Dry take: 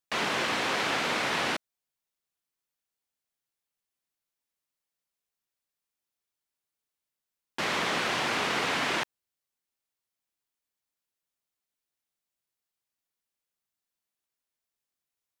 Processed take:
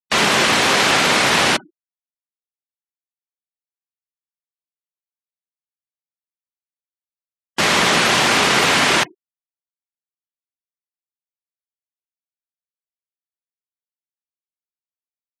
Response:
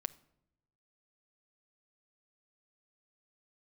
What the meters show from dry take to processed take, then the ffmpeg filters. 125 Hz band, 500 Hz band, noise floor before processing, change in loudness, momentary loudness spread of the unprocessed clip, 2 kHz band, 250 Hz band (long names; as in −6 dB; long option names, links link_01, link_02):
+15.0 dB, +12.5 dB, below −85 dBFS, +13.5 dB, 6 LU, +13.0 dB, +13.5 dB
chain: -filter_complex "[0:a]asplit=2[link_01][link_02];[link_02]aemphasis=mode=production:type=50fm[link_03];[1:a]atrim=start_sample=2205,asetrate=57330,aresample=44100,lowshelf=frequency=110:gain=9.5[link_04];[link_03][link_04]afir=irnorm=-1:irlink=0,volume=15dB[link_05];[link_01][link_05]amix=inputs=2:normalize=0,afftfilt=real='re*gte(hypot(re,im),0.0501)':imag='im*gte(hypot(re,im),0.0501)':win_size=1024:overlap=0.75,volume=-1dB"